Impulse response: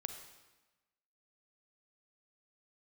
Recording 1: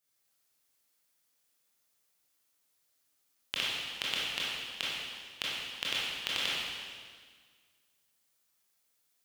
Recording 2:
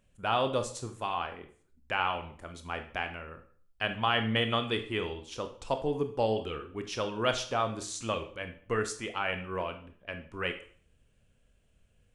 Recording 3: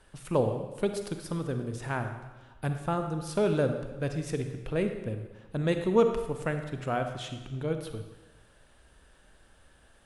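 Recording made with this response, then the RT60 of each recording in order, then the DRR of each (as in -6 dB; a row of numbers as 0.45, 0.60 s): 3; 1.7, 0.50, 1.1 s; -8.0, 7.0, 6.5 dB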